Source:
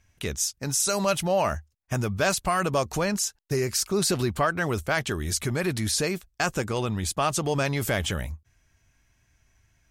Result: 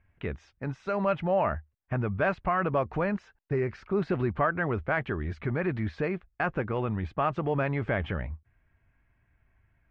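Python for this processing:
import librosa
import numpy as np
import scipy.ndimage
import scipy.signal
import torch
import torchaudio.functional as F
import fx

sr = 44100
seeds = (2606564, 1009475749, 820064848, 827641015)

y = scipy.signal.sosfilt(scipy.signal.butter(4, 2200.0, 'lowpass', fs=sr, output='sos'), x)
y = y * 10.0 ** (-2.0 / 20.0)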